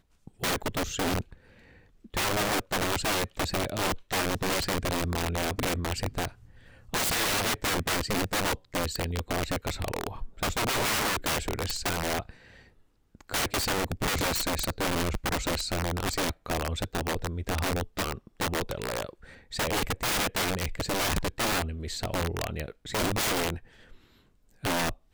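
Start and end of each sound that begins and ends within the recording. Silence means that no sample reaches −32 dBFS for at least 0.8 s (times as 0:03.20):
0:02.14–0:12.29
0:13.29–0:23.56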